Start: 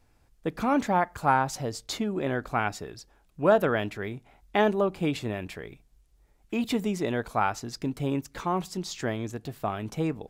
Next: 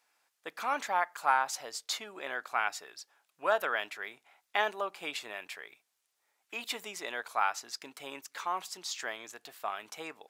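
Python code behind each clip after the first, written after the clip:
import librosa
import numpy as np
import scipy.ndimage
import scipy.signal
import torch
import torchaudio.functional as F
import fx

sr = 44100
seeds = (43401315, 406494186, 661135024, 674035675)

y = scipy.signal.sosfilt(scipy.signal.butter(2, 1000.0, 'highpass', fs=sr, output='sos'), x)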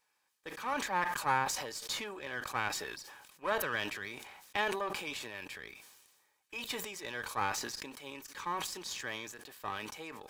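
y = np.where(x < 0.0, 10.0 ** (-7.0 / 20.0) * x, x)
y = fx.notch_comb(y, sr, f0_hz=690.0)
y = fx.sustainer(y, sr, db_per_s=40.0)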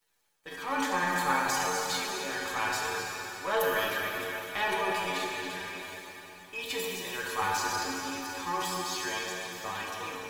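y = fx.quant_dither(x, sr, seeds[0], bits=12, dither='none')
y = fx.stiff_resonator(y, sr, f0_hz=89.0, decay_s=0.2, stiffness=0.002)
y = fx.rev_plate(y, sr, seeds[1], rt60_s=4.1, hf_ratio=0.9, predelay_ms=0, drr_db=-2.5)
y = y * 10.0 ** (8.5 / 20.0)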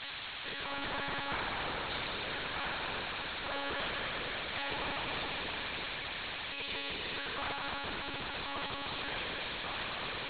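y = x + 0.5 * 10.0 ** (-19.5 / 20.0) * np.diff(np.sign(x), prepend=np.sign(x[:1]))
y = fx.lpc_monotone(y, sr, seeds[2], pitch_hz=280.0, order=16)
y = fx.spectral_comp(y, sr, ratio=2.0)
y = y * 10.0 ** (-7.5 / 20.0)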